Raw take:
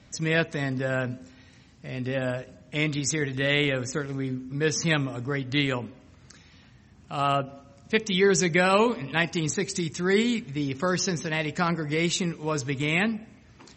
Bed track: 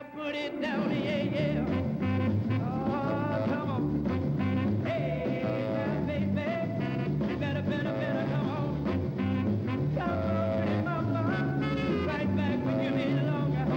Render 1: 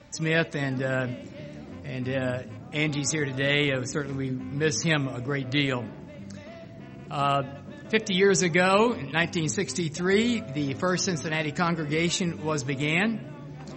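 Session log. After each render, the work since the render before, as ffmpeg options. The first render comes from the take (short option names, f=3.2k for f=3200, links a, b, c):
-filter_complex "[1:a]volume=-12.5dB[a];[0:a][a]amix=inputs=2:normalize=0"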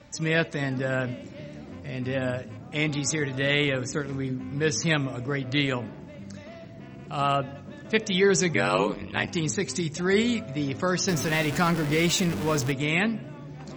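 -filter_complex "[0:a]asettb=1/sr,asplit=3[a][b][c];[a]atrim=end=8.534[d];[b]atrim=start=8.53:end=9.28,asetpts=PTS-STARTPTS,afade=t=in:d=0.004:c=qsin,afade=t=out:st=0.746:d=0.004:c=qsin,aeval=exprs='val(0)*sin(2*PI*49*n/s)':c=same[e];[c]atrim=start=9.276[f];[d][e]acrossfade=d=0.004:c1=hsin:c2=qsin[g];[g][f]acrossfade=d=0.004:c1=qsin:c2=hsin,asettb=1/sr,asplit=3[h][i][j];[h]atrim=end=11.084[k];[i]atrim=start=11.08:end=12.72,asetpts=PTS-STARTPTS,afade=t=in:d=0.004:c=qsin,afade=t=out:st=1.636:d=0.004:c=qsin,aeval=exprs='val(0)+0.5*0.0398*sgn(val(0))':c=same[l];[j]atrim=start=12.716[m];[k][l]acrossfade=d=0.004:c1=hsin:c2=qsin[n];[n][m]acrossfade=d=0.004:c1=qsin:c2=hsin"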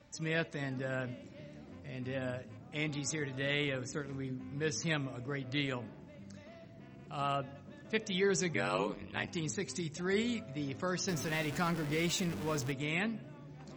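-af "volume=-10dB"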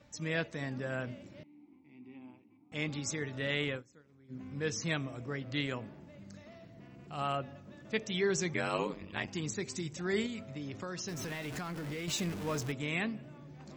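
-filter_complex "[0:a]asettb=1/sr,asplit=3[a][b][c];[a]atrim=end=1.434[d];[b]atrim=start=1.43:end=2.72,asetpts=PTS-STARTPTS,afade=t=in:d=0.004:c=qsin,afade=t=out:st=1.286:d=0.004:c=qsin,asplit=3[e][f][g];[e]bandpass=f=300:t=q:w=8,volume=0dB[h];[f]bandpass=f=870:t=q:w=8,volume=-6dB[i];[g]bandpass=f=2.24k:t=q:w=8,volume=-9dB[j];[h][i][j]amix=inputs=3:normalize=0[k];[c]atrim=start=2.716[l];[d][k]acrossfade=d=0.004:c1=hsin:c2=qsin[m];[m][l]acrossfade=d=0.004:c1=qsin:c2=hsin,asettb=1/sr,asplit=3[n][o][p];[n]atrim=end=10.264[q];[o]atrim=start=10.26:end=12.08,asetpts=PTS-STARTPTS,afade=t=in:d=0.004:c=qsin,afade=t=out:st=1.816:d=0.004:c=qsin,acompressor=threshold=-36dB:ratio=6:attack=3.2:release=140:knee=1:detection=peak[r];[p]atrim=start=12.076[s];[q][r]acrossfade=d=0.004:c1=hsin:c2=qsin[t];[t][s]acrossfade=d=0.004:c1=qsin:c2=hsin,asplit=3[u][v][w];[u]atrim=end=3.83,asetpts=PTS-STARTPTS,afade=t=out:st=3.7:d=0.13:c=qsin:silence=0.0841395[x];[v]atrim=start=3.83:end=4.28,asetpts=PTS-STARTPTS,volume=-21.5dB[y];[w]atrim=start=4.28,asetpts=PTS-STARTPTS,afade=t=in:d=0.13:c=qsin:silence=0.0841395[z];[x][y][z]concat=n=3:v=0:a=1"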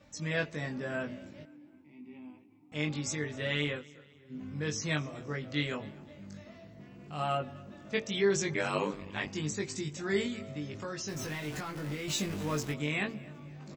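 -filter_complex "[0:a]asplit=2[a][b];[b]adelay=20,volume=-3dB[c];[a][c]amix=inputs=2:normalize=0,aecho=1:1:256|512|768:0.0708|0.0326|0.015"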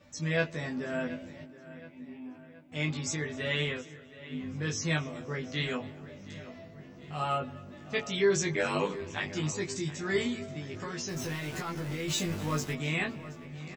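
-filter_complex "[0:a]asplit=2[a][b];[b]adelay=12,volume=-3dB[c];[a][c]amix=inputs=2:normalize=0,asplit=2[d][e];[e]adelay=723,lowpass=f=4k:p=1,volume=-16dB,asplit=2[f][g];[g]adelay=723,lowpass=f=4k:p=1,volume=0.52,asplit=2[h][i];[i]adelay=723,lowpass=f=4k:p=1,volume=0.52,asplit=2[j][k];[k]adelay=723,lowpass=f=4k:p=1,volume=0.52,asplit=2[l][m];[m]adelay=723,lowpass=f=4k:p=1,volume=0.52[n];[d][f][h][j][l][n]amix=inputs=6:normalize=0"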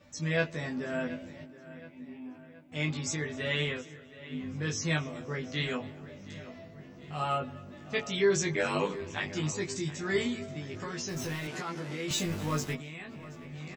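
-filter_complex "[0:a]asettb=1/sr,asplit=3[a][b][c];[a]atrim=end=11.474[d];[b]atrim=start=11.47:end=12.11,asetpts=PTS-STARTPTS,afade=t=in:d=0.004:c=qsin,afade=t=out:st=0.636:d=0.004:c=qsin,highpass=170,lowpass=7.8k[e];[c]atrim=start=12.106[f];[d][e]acrossfade=d=0.004:c1=hsin:c2=qsin[g];[g][f]acrossfade=d=0.004:c1=qsin:c2=hsin,asettb=1/sr,asplit=3[h][i][j];[h]atrim=end=12.764[k];[i]atrim=start=12.76:end=13.36,asetpts=PTS-STARTPTS,afade=t=in:d=0.004:c=qsin,afade=t=out:st=0.596:d=0.004:c=qsin,acompressor=threshold=-40dB:ratio=6:attack=3.2:release=140:knee=1:detection=peak[l];[j]atrim=start=13.356[m];[k][l]acrossfade=d=0.004:c1=hsin:c2=qsin[n];[n][m]acrossfade=d=0.004:c1=qsin:c2=hsin"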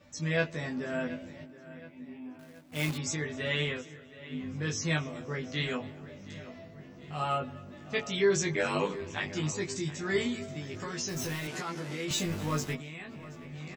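-filter_complex "[0:a]asettb=1/sr,asplit=3[a][b][c];[a]atrim=end=2.394[d];[b]atrim=start=2.39:end=2.98,asetpts=PTS-STARTPTS,afade=t=in:d=0.004:c=qsin,afade=t=out:st=0.586:d=0.004:c=qsin,acrusher=bits=2:mode=log:mix=0:aa=0.000001[e];[c]atrim=start=2.976[f];[d][e]acrossfade=d=0.004:c1=hsin:c2=qsin[g];[g][f]acrossfade=d=0.004:c1=qsin:c2=hsin,asettb=1/sr,asplit=3[h][i][j];[h]atrim=end=10.344[k];[i]atrim=start=10.34:end=12.05,asetpts=PTS-STARTPTS,afade=t=in:d=0.004:c=qsin,afade=t=out:st=1.706:d=0.004:c=qsin,highshelf=f=6.2k:g=6.5[l];[j]atrim=start=12.046[m];[k][l]acrossfade=d=0.004:c1=hsin:c2=qsin[n];[n][m]acrossfade=d=0.004:c1=qsin:c2=hsin"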